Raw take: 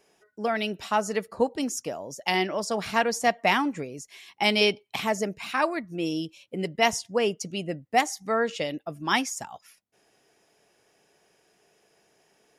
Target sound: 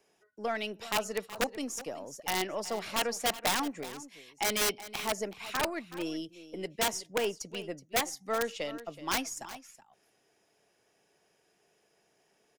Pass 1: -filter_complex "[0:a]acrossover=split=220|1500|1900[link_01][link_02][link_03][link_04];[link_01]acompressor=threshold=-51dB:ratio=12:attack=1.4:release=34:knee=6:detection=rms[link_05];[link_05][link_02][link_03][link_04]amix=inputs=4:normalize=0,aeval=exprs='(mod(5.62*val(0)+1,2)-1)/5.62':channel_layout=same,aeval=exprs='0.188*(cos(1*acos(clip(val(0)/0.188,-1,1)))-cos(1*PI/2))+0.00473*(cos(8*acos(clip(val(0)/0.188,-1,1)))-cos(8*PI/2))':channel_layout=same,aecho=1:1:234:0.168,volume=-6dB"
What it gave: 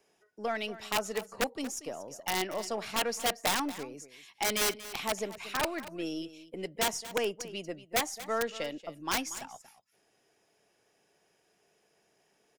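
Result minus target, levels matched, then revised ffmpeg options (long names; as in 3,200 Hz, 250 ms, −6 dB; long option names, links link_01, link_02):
echo 140 ms early
-filter_complex "[0:a]acrossover=split=220|1500|1900[link_01][link_02][link_03][link_04];[link_01]acompressor=threshold=-51dB:ratio=12:attack=1.4:release=34:knee=6:detection=rms[link_05];[link_05][link_02][link_03][link_04]amix=inputs=4:normalize=0,aeval=exprs='(mod(5.62*val(0)+1,2)-1)/5.62':channel_layout=same,aeval=exprs='0.188*(cos(1*acos(clip(val(0)/0.188,-1,1)))-cos(1*PI/2))+0.00473*(cos(8*acos(clip(val(0)/0.188,-1,1)))-cos(8*PI/2))':channel_layout=same,aecho=1:1:374:0.168,volume=-6dB"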